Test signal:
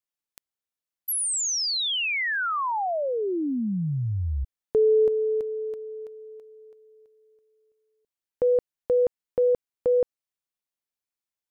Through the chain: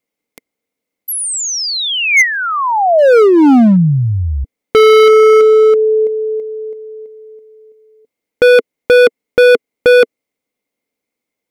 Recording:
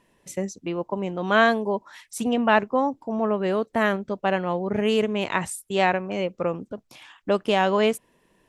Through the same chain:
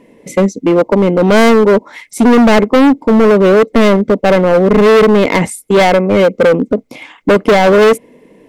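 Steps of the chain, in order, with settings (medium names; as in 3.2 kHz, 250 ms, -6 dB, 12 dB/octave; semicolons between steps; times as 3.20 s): small resonant body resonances 270/450/2100 Hz, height 18 dB, ringing for 25 ms; hard clipper -12.5 dBFS; trim +7.5 dB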